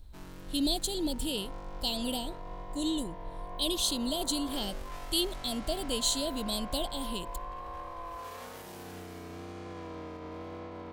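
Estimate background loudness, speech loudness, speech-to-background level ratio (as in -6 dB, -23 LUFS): -44.5 LUFS, -32.5 LUFS, 12.0 dB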